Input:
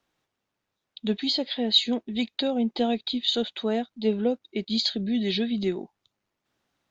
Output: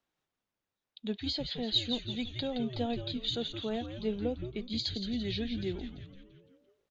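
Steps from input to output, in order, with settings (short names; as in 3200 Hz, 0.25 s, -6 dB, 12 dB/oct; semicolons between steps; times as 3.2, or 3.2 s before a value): frequency-shifting echo 0.17 s, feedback 53%, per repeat -130 Hz, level -7.5 dB; gain -9 dB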